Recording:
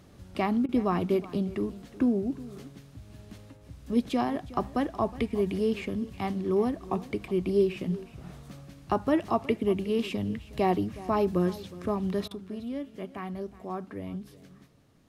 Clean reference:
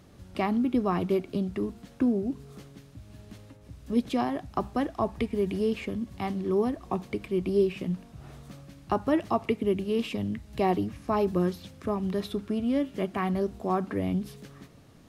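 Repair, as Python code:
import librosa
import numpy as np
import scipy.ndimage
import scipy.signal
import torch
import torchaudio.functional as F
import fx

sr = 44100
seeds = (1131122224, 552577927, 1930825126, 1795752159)

y = fx.fix_interpolate(x, sr, at_s=(0.66, 12.28), length_ms=28.0)
y = fx.fix_echo_inverse(y, sr, delay_ms=366, level_db=-18.0)
y = fx.gain(y, sr, db=fx.steps((0.0, 0.0), (12.32, 8.5)))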